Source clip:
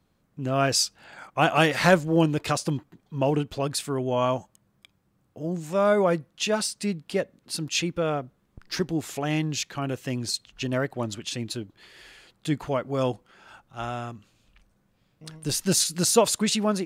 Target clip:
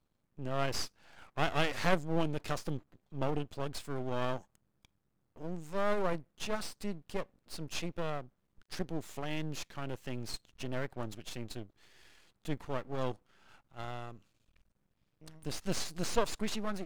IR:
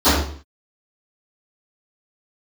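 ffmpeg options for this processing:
-filter_complex "[0:a]aeval=exprs='max(val(0),0)':c=same,lowshelf=f=140:g=3.5,acrossover=split=6900[a][b];[b]acompressor=threshold=-41dB:ratio=4:attack=1:release=60[c];[a][c]amix=inputs=2:normalize=0,volume=-8dB"

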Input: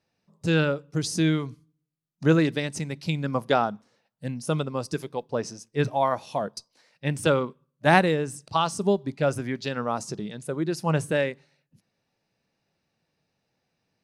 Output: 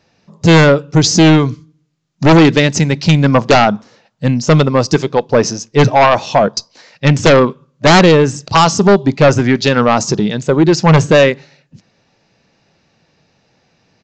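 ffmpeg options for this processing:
-af "acontrast=67,aeval=exprs='0.794*sin(PI/2*3.16*val(0)/0.794)':c=same,aresample=16000,aresample=44100,volume=-1dB"

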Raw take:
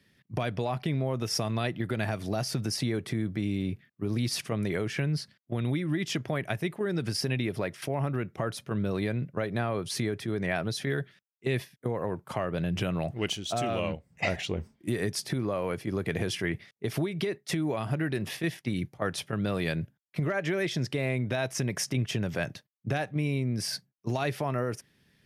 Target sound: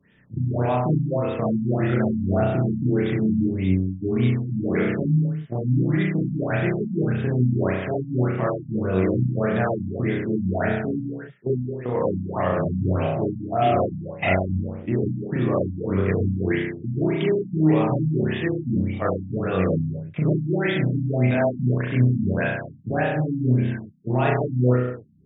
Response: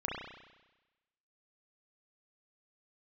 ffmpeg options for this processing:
-filter_complex "[0:a]asettb=1/sr,asplit=3[a][b][c];[a]atrim=end=11.534[d];[b]atrim=start=11.53:end=11.94,asetpts=PTS-STARTPTS,afade=t=in:d=0.004:c=qsin,afade=t=out:st=0.406:d=0.004:c=qsin,equalizer=f=140:t=o:w=0.83:g=-7[e];[c]atrim=start=11.936[f];[d][e]acrossfade=d=0.004:c1=hsin:c2=qsin[g];[g][f]acrossfade=d=0.004:c1=qsin:c2=hsin[h];[1:a]atrim=start_sample=2205,afade=t=out:st=0.34:d=0.01,atrim=end_sample=15435[i];[h][i]afir=irnorm=-1:irlink=0,afftfilt=real='re*lt(b*sr/1024,280*pow(3800/280,0.5+0.5*sin(2*PI*1.7*pts/sr)))':imag='im*lt(b*sr/1024,280*pow(3800/280,0.5+0.5*sin(2*PI*1.7*pts/sr)))':win_size=1024:overlap=0.75,volume=4.5dB"

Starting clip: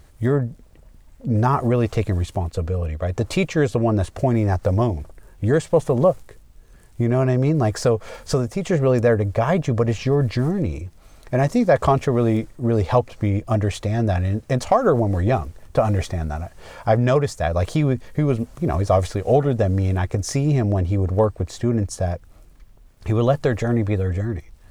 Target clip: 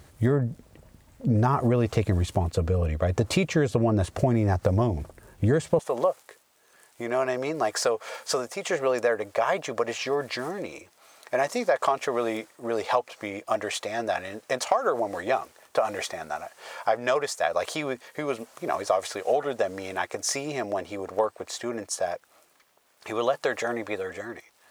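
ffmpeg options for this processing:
-af "asetnsamples=n=441:p=0,asendcmd='5.79 highpass f 630',highpass=81,acompressor=threshold=-21dB:ratio=5,volume=2dB"

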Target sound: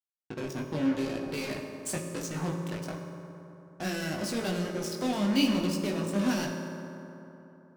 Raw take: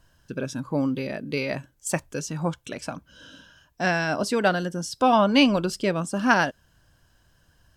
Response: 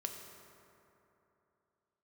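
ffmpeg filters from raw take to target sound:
-filter_complex "[0:a]acrossover=split=360|3000[a][b][c];[b]acompressor=threshold=-34dB:ratio=6[d];[a][d][c]amix=inputs=3:normalize=0,acrusher=bits=4:mix=0:aa=0.5,flanger=delay=17.5:depth=2.4:speed=0.89[e];[1:a]atrim=start_sample=2205,asetrate=40572,aresample=44100[f];[e][f]afir=irnorm=-1:irlink=0"

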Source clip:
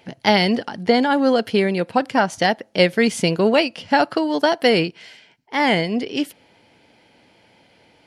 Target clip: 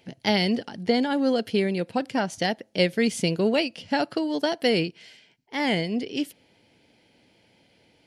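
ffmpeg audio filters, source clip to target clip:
-af "equalizer=f=1.1k:t=o:w=1.6:g=-8,volume=-4dB"

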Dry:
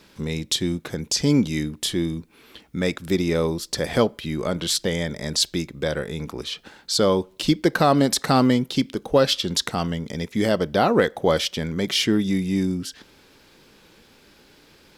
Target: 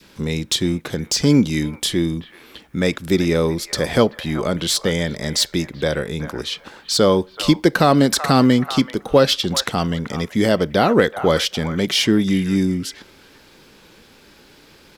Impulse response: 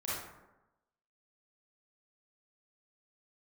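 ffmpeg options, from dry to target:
-filter_complex "[0:a]adynamicequalizer=threshold=0.0178:dfrequency=790:dqfactor=1.1:tfrequency=790:tqfactor=1.1:attack=5:release=100:ratio=0.375:range=2:mode=cutabove:tftype=bell,acrossover=split=760|2900[a][b][c];[b]asplit=2[d][e];[e]adelay=382,lowpass=f=1.4k:p=1,volume=-4.5dB,asplit=2[f][g];[g]adelay=382,lowpass=f=1.4k:p=1,volume=0.22,asplit=2[h][i];[i]adelay=382,lowpass=f=1.4k:p=1,volume=0.22[j];[d][f][h][j]amix=inputs=4:normalize=0[k];[c]asoftclip=type=tanh:threshold=-16.5dB[l];[a][k][l]amix=inputs=3:normalize=0,volume=4.5dB"

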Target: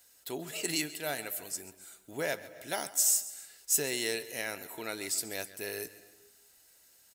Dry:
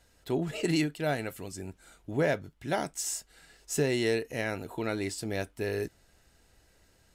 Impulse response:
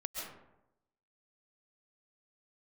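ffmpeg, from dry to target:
-filter_complex "[0:a]aemphasis=mode=production:type=riaa,asplit=2[a][b];[b]adelay=139.9,volume=-17dB,highshelf=f=4k:g=-3.15[c];[a][c]amix=inputs=2:normalize=0,asplit=2[d][e];[1:a]atrim=start_sample=2205,adelay=129[f];[e][f]afir=irnorm=-1:irlink=0,volume=-18dB[g];[d][g]amix=inputs=2:normalize=0,volume=-4.5dB"

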